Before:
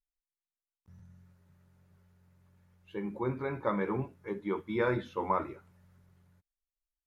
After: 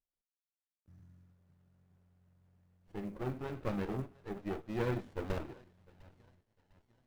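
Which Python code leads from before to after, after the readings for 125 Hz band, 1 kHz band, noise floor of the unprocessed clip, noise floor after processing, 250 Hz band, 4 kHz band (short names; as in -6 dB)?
-1.0 dB, -10.5 dB, under -85 dBFS, under -85 dBFS, -4.5 dB, -2.0 dB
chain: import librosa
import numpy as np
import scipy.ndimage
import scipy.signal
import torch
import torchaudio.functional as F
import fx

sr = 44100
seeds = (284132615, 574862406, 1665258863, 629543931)

y = fx.echo_banded(x, sr, ms=703, feedback_pct=63, hz=2200.0, wet_db=-17)
y = fx.quant_float(y, sr, bits=4)
y = fx.running_max(y, sr, window=33)
y = y * 10.0 ** (-4.0 / 20.0)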